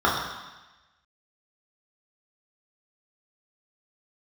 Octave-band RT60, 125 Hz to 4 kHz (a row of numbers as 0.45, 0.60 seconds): 1.1, 1.0, 1.0, 1.1, 1.2, 1.2 seconds